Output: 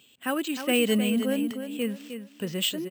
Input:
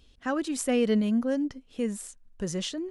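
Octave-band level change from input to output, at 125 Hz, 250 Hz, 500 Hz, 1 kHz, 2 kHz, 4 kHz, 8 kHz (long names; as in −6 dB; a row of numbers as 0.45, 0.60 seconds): can't be measured, +0.5 dB, +0.5 dB, +1.0 dB, +6.5 dB, +8.5 dB, +1.0 dB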